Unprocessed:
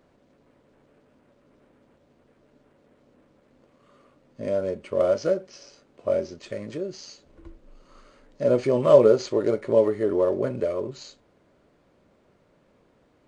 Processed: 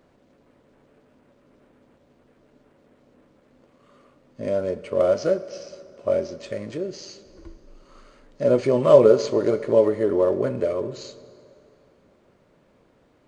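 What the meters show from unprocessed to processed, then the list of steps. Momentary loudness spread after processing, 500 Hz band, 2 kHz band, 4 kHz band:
18 LU, +2.0 dB, +2.0 dB, +2.0 dB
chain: plate-style reverb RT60 2.7 s, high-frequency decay 0.75×, DRR 14.5 dB; trim +2 dB

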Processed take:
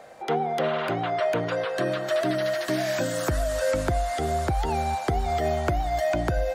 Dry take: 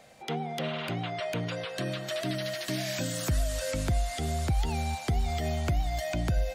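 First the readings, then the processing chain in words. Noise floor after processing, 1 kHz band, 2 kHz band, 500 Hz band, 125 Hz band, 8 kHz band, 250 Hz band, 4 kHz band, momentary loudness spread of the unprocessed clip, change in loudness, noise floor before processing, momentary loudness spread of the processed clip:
-34 dBFS, +10.0 dB, +6.0 dB, +10.0 dB, 0.0 dB, 0.0 dB, +4.0 dB, 0.0 dB, 4 LU, +5.5 dB, -41 dBFS, 2 LU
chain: high-order bell 740 Hz +10 dB 2.8 oct

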